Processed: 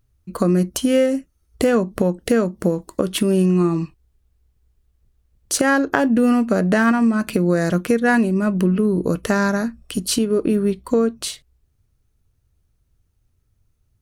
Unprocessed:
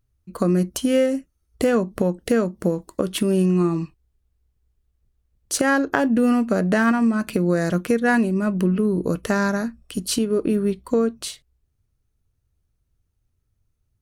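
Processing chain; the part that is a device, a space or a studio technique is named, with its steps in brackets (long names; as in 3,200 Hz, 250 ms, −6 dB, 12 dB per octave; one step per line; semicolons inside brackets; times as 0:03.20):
parallel compression (in parallel at −2.5 dB: downward compressor, threshold −31 dBFS, peak gain reduction 15.5 dB)
on the sum: level +1 dB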